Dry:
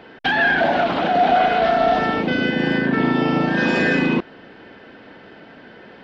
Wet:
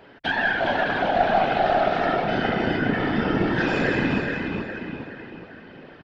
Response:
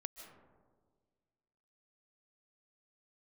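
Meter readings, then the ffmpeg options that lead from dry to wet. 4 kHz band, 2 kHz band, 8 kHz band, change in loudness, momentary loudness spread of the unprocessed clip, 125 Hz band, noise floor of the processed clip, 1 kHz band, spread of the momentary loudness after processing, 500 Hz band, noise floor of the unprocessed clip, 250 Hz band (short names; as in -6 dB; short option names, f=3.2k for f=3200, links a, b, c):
-4.5 dB, -4.5 dB, n/a, -4.5 dB, 4 LU, -2.0 dB, -47 dBFS, -4.0 dB, 15 LU, -3.5 dB, -44 dBFS, -5.0 dB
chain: -filter_complex "[0:a]asplit=2[a][b];[b]adelay=416,lowpass=f=4.6k:p=1,volume=-3.5dB,asplit=2[c][d];[d]adelay=416,lowpass=f=4.6k:p=1,volume=0.49,asplit=2[e][f];[f]adelay=416,lowpass=f=4.6k:p=1,volume=0.49,asplit=2[g][h];[h]adelay=416,lowpass=f=4.6k:p=1,volume=0.49,asplit=2[i][j];[j]adelay=416,lowpass=f=4.6k:p=1,volume=0.49,asplit=2[k][l];[l]adelay=416,lowpass=f=4.6k:p=1,volume=0.49[m];[a][c][e][g][i][k][m]amix=inputs=7:normalize=0,afftfilt=real='hypot(re,im)*cos(2*PI*random(0))':imag='hypot(re,im)*sin(2*PI*random(1))':win_size=512:overlap=0.75,aeval=exprs='0.447*(cos(1*acos(clip(val(0)/0.447,-1,1)))-cos(1*PI/2))+0.0631*(cos(2*acos(clip(val(0)/0.447,-1,1)))-cos(2*PI/2))':c=same"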